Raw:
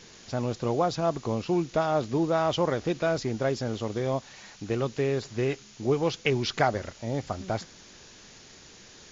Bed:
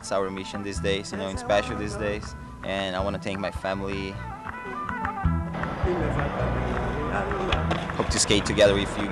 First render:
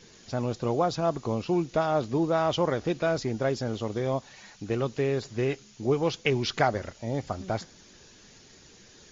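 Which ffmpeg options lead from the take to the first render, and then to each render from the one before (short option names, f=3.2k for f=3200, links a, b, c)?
-af "afftdn=nr=6:nf=-51"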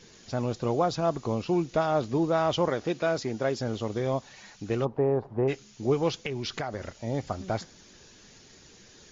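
-filter_complex "[0:a]asettb=1/sr,asplit=3[a][b][c];[a]atrim=end=2.684[d];[b]atrim=start=2.68:end=3.59,asetpts=PTS-STARTPTS,afade=t=in:d=0.004:c=qsin,afade=t=out:st=0.906:d=0.004:c=qsin,highpass=f=170:p=1[e];[c]atrim=start=3.586[f];[d][e]acrossfade=d=0.004:c1=hsin:c2=qsin[g];[g][f]acrossfade=d=0.004:c1=qsin:c2=hsin,asplit=3[h][i][j];[h]afade=t=out:st=4.84:d=0.02[k];[i]lowpass=f=870:t=q:w=3.4,afade=t=in:st=4.84:d=0.02,afade=t=out:st=5.47:d=0.02[l];[j]afade=t=in:st=5.47:d=0.02[m];[k][l][m]amix=inputs=3:normalize=0,asettb=1/sr,asplit=3[n][o][p];[n]atrim=end=6.254[q];[o]atrim=start=6.25:end=6.9,asetpts=PTS-STARTPTS,afade=t=in:d=0.004:c=qsin,afade=t=out:st=0.646:d=0.004:c=qsin,acompressor=threshold=-29dB:ratio=5:attack=3.2:release=140:knee=1:detection=peak[r];[p]atrim=start=6.896[s];[q][r]acrossfade=d=0.004:c1=hsin:c2=qsin[t];[t][s]acrossfade=d=0.004:c1=qsin:c2=hsin"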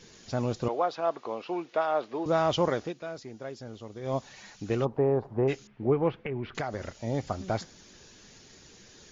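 -filter_complex "[0:a]asettb=1/sr,asplit=3[a][b][c];[a]atrim=end=0.684[d];[b]atrim=start=0.68:end=2.26,asetpts=PTS-STARTPTS,afade=t=in:d=0.004:c=qsin,afade=t=out:st=1.576:d=0.004:c=qsin,highpass=500,lowpass=3.1k[e];[c]atrim=start=2.256[f];[d][e]acrossfade=d=0.004:c1=hsin:c2=qsin[g];[g][f]acrossfade=d=0.004:c1=qsin:c2=hsin,asettb=1/sr,asplit=3[h][i][j];[h]atrim=end=5.674[k];[i]atrim=start=5.67:end=6.55,asetpts=PTS-STARTPTS,afade=t=in:d=0.004:c=qsin,afade=t=out:st=0.876:d=0.004:c=qsin,lowpass=f=2.2k:w=0.5412,lowpass=f=2.2k:w=1.3066[l];[j]atrim=start=6.546[m];[k][l]acrossfade=d=0.004:c1=hsin:c2=qsin[n];[n][m]acrossfade=d=0.004:c1=qsin:c2=hsin,asplit=3[o][p][q];[o]atrim=end=2.94,asetpts=PTS-STARTPTS,afade=t=out:st=2.78:d=0.16:silence=0.266073[r];[p]atrim=start=2.94:end=4.01,asetpts=PTS-STARTPTS,volume=-11.5dB[s];[q]atrim=start=4.01,asetpts=PTS-STARTPTS,afade=t=in:d=0.16:silence=0.266073[t];[r][s][t]concat=n=3:v=0:a=1"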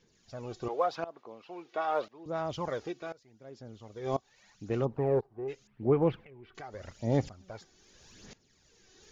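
-af "aphaser=in_gain=1:out_gain=1:delay=2.7:decay=0.5:speed=0.84:type=sinusoidal,aeval=exprs='val(0)*pow(10,-20*if(lt(mod(-0.96*n/s,1),2*abs(-0.96)/1000),1-mod(-0.96*n/s,1)/(2*abs(-0.96)/1000),(mod(-0.96*n/s,1)-2*abs(-0.96)/1000)/(1-2*abs(-0.96)/1000))/20)':c=same"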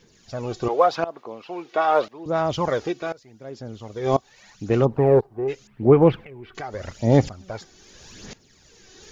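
-af "volume=11.5dB"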